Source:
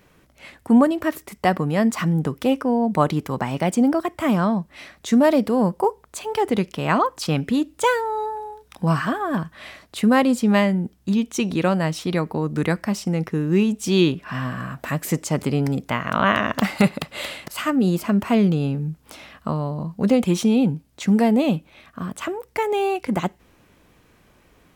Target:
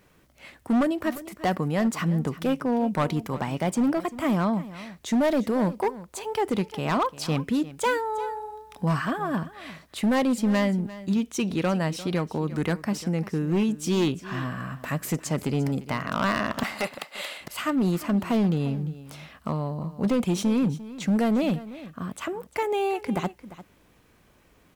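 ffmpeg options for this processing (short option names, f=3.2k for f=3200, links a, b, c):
-filter_complex "[0:a]asettb=1/sr,asplit=3[a][b][c];[a]atrim=end=16.634[d];[b]atrim=start=16.63:end=17.41,asetpts=PTS-STARTPTS,afade=t=in:d=0.004:c=qsin,afade=t=out:st=0.776:d=0.004:c=qsin,highpass=510[e];[c]atrim=start=17.406[f];[d][e]acrossfade=d=0.004:c1=hsin:c2=qsin[g];[g][f]acrossfade=d=0.004:c1=qsin:c2=hsin,asoftclip=type=hard:threshold=-14.5dB,acrusher=bits=10:mix=0:aa=0.000001,asplit=2[h][i];[i]aecho=0:1:348:0.15[j];[h][j]amix=inputs=2:normalize=0,volume=-4dB"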